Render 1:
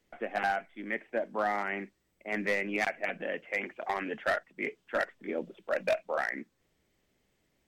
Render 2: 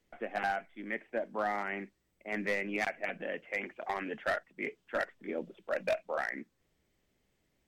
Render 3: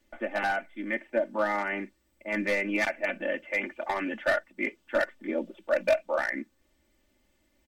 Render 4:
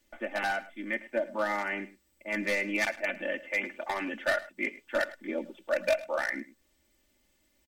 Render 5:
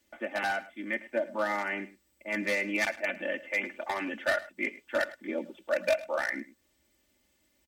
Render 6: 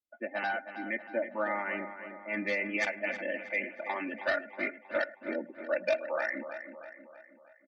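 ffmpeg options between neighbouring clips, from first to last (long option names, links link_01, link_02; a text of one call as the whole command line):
ffmpeg -i in.wav -af "lowshelf=frequency=140:gain=3.5,volume=-3dB" out.wav
ffmpeg -i in.wav -af "aecho=1:1:3.4:0.93,volume=3.5dB" out.wav
ffmpeg -i in.wav -af "highshelf=frequency=3000:gain=8.5,aecho=1:1:106:0.126,volume=-3.5dB" out.wav
ffmpeg -i in.wav -af "highpass=47" out.wav
ffmpeg -i in.wav -filter_complex "[0:a]afftdn=noise_reduction=30:noise_floor=-40,asplit=2[link_01][link_02];[link_02]adelay=318,lowpass=frequency=4100:poles=1,volume=-10dB,asplit=2[link_03][link_04];[link_04]adelay=318,lowpass=frequency=4100:poles=1,volume=0.52,asplit=2[link_05][link_06];[link_06]adelay=318,lowpass=frequency=4100:poles=1,volume=0.52,asplit=2[link_07][link_08];[link_08]adelay=318,lowpass=frequency=4100:poles=1,volume=0.52,asplit=2[link_09][link_10];[link_10]adelay=318,lowpass=frequency=4100:poles=1,volume=0.52,asplit=2[link_11][link_12];[link_12]adelay=318,lowpass=frequency=4100:poles=1,volume=0.52[link_13];[link_01][link_03][link_05][link_07][link_09][link_11][link_13]amix=inputs=7:normalize=0,volume=-2dB" out.wav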